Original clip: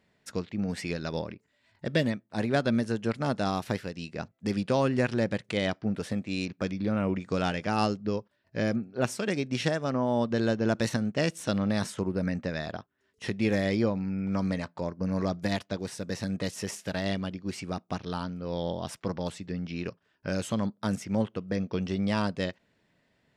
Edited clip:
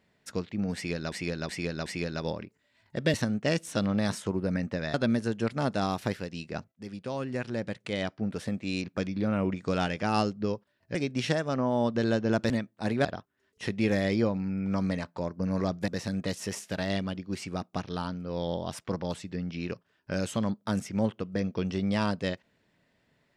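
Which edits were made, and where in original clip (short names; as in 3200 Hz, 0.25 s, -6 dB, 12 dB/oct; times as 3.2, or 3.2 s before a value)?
0.75–1.12 loop, 4 plays
2.03–2.58 swap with 10.86–12.66
4.36–6.4 fade in, from -14 dB
8.59–9.31 cut
15.49–16.04 cut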